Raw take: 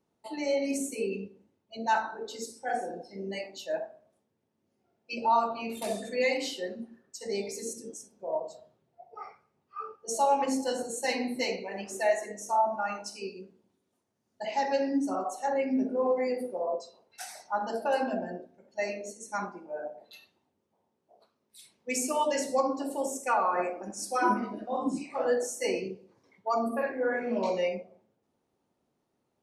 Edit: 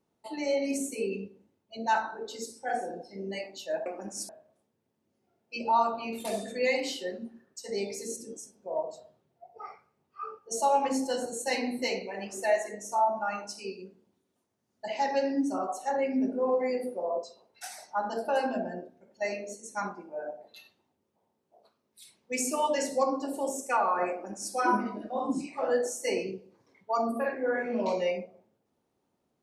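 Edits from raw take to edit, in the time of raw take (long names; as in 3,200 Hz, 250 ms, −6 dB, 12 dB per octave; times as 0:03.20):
0:23.68–0:24.11: duplicate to 0:03.86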